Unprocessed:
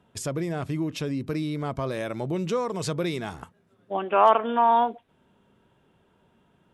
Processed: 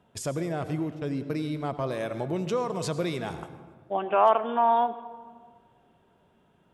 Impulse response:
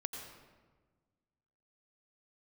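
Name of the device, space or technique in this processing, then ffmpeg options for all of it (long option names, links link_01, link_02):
ducked reverb: -filter_complex "[0:a]equalizer=frequency=690:width=1.9:gain=4,asplit=3[link_01][link_02][link_03];[link_01]afade=type=out:start_time=0.93:duration=0.02[link_04];[link_02]agate=range=-27dB:threshold=-29dB:ratio=16:detection=peak,afade=type=in:start_time=0.93:duration=0.02,afade=type=out:start_time=2.12:duration=0.02[link_05];[link_03]afade=type=in:start_time=2.12:duration=0.02[link_06];[link_04][link_05][link_06]amix=inputs=3:normalize=0,asplit=3[link_07][link_08][link_09];[1:a]atrim=start_sample=2205[link_10];[link_08][link_10]afir=irnorm=-1:irlink=0[link_11];[link_09]apad=whole_len=297114[link_12];[link_11][link_12]sidechaincompress=threshold=-21dB:ratio=5:attack=16:release=1200,volume=-1dB[link_13];[link_07][link_13]amix=inputs=2:normalize=0,volume=-6.5dB"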